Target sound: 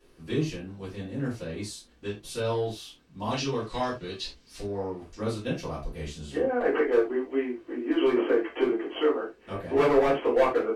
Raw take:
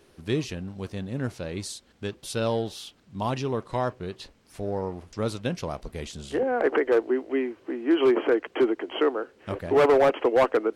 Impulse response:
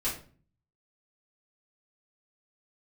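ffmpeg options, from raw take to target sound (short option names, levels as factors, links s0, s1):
-filter_complex "[0:a]asettb=1/sr,asplit=3[s0][s1][s2];[s0]atrim=end=3.304[s3];[s1]atrim=start=3.3:end=4.63,asetpts=PTS-STARTPTS,afade=t=in:d=0.004:c=qsin,afade=t=out:st=1.326:d=0.004:c=qsin,equalizer=f=4700:w=0.71:g=12[s4];[s2]atrim=start=4.626[s5];[s3][s4]acrossfade=d=0.004:c1=hsin:c2=qsin[s6];[s6][s5]acrossfade=d=0.004:c1=qsin:c2=hsin[s7];[1:a]atrim=start_sample=2205,atrim=end_sample=4410[s8];[s7][s8]afir=irnorm=-1:irlink=0,volume=0.398"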